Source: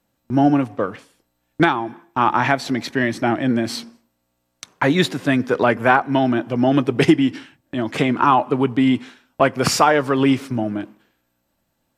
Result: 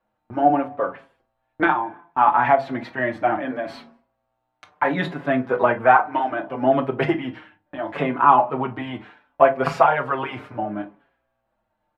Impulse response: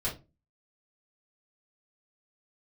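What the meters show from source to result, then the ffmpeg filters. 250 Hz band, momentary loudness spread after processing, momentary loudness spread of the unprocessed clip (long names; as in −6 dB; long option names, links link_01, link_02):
−9.0 dB, 15 LU, 11 LU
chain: -filter_complex "[0:a]firequalizer=gain_entry='entry(280,0);entry(670,12);entry(5700,-15)':delay=0.05:min_phase=1,asplit=2[link_01][link_02];[1:a]atrim=start_sample=2205,asetrate=61740,aresample=44100,adelay=15[link_03];[link_02][link_03]afir=irnorm=-1:irlink=0,volume=-11.5dB[link_04];[link_01][link_04]amix=inputs=2:normalize=0,asplit=2[link_05][link_06];[link_06]adelay=5.9,afreqshift=-0.69[link_07];[link_05][link_07]amix=inputs=2:normalize=1,volume=-6.5dB"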